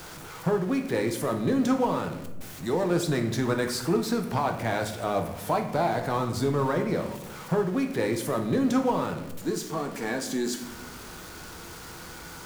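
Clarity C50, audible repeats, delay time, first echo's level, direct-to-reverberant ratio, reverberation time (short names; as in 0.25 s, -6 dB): 9.0 dB, none, none, none, 4.0 dB, 1.0 s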